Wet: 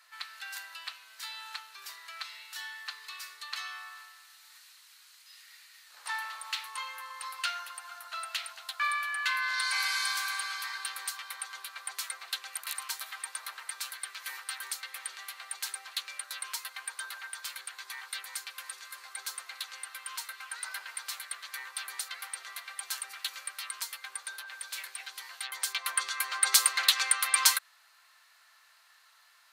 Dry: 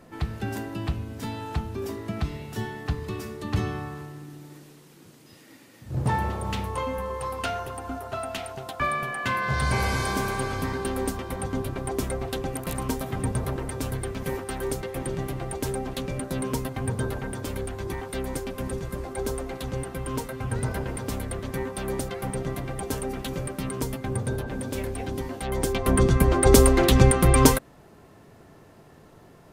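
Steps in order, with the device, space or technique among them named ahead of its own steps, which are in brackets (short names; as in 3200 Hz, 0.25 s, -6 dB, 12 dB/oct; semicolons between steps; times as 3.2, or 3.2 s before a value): headphones lying on a table (HPF 1300 Hz 24 dB/oct; bell 4200 Hz +8.5 dB 0.29 oct)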